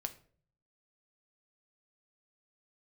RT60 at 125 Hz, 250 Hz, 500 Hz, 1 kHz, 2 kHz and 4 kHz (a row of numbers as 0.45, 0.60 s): 0.90, 0.65, 0.60, 0.40, 0.40, 0.30 s